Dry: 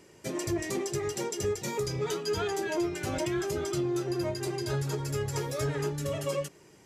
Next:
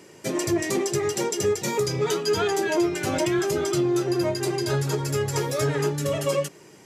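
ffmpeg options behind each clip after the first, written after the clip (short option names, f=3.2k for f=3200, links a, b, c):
-af "highpass=120,volume=7.5dB"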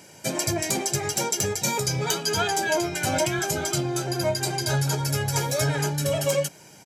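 -af "bass=f=250:g=-1,treble=f=4k:g=5,aecho=1:1:1.3:0.61,aeval=exprs='(mod(3.55*val(0)+1,2)-1)/3.55':c=same"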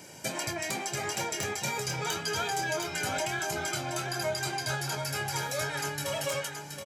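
-filter_complex "[0:a]acrossover=split=820|3400[a][b][c];[a]acompressor=threshold=-39dB:ratio=4[d];[b]acompressor=threshold=-34dB:ratio=4[e];[c]acompressor=threshold=-38dB:ratio=4[f];[d][e][f]amix=inputs=3:normalize=0,asplit=2[g][h];[h]adelay=24,volume=-10.5dB[i];[g][i]amix=inputs=2:normalize=0,aecho=1:1:725:0.447"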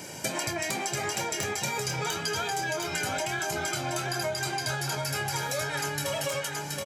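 -af "acompressor=threshold=-35dB:ratio=6,volume=7.5dB"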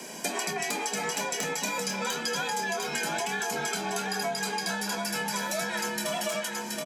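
-filter_complex "[0:a]afreqshift=64,acrossover=split=260[a][b];[a]asoftclip=type=hard:threshold=-39.5dB[c];[c][b]amix=inputs=2:normalize=0"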